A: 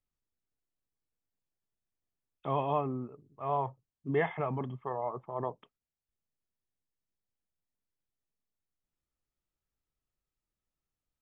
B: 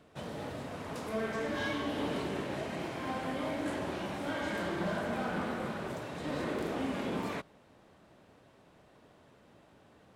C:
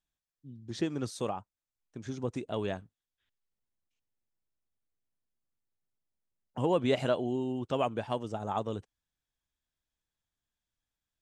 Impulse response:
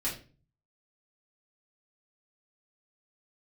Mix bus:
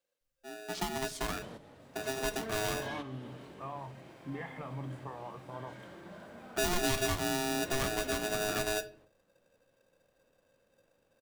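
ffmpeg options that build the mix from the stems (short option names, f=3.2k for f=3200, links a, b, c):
-filter_complex "[0:a]acompressor=threshold=-36dB:ratio=4,equalizer=f=450:w=0.51:g=-8,adelay=200,volume=-1dB,asplit=2[a][b];[b]volume=-8.5dB[c];[1:a]adelay=1250,volume=-5.5dB[d];[2:a]asubboost=boost=10:cutoff=130,aeval=exprs='val(0)*sgn(sin(2*PI*530*n/s))':c=same,volume=-1dB,asplit=3[e][f][g];[f]volume=-13dB[h];[g]apad=whole_len=502758[i];[d][i]sidechaingate=range=-10dB:threshold=-60dB:ratio=16:detection=peak[j];[3:a]atrim=start_sample=2205[k];[c][h]amix=inputs=2:normalize=0[l];[l][k]afir=irnorm=-1:irlink=0[m];[a][j][e][m]amix=inputs=4:normalize=0,acrossover=split=160|3000[n][o][p];[o]acompressor=threshold=-34dB:ratio=2[q];[n][q][p]amix=inputs=3:normalize=0,asoftclip=type=tanh:threshold=-19dB"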